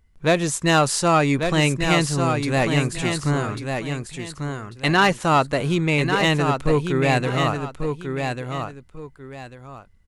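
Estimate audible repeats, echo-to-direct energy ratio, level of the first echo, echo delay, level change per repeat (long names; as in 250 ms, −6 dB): 2, −5.5 dB, −6.0 dB, 1,144 ms, −11.5 dB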